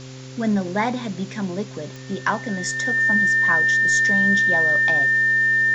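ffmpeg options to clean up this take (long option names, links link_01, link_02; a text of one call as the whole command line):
ffmpeg -i in.wav -af "adeclick=threshold=4,bandreject=frequency=130.4:width_type=h:width=4,bandreject=frequency=260.8:width_type=h:width=4,bandreject=frequency=391.2:width_type=h:width=4,bandreject=frequency=521.6:width_type=h:width=4,bandreject=frequency=1800:width=30,afwtdn=0.0089" out.wav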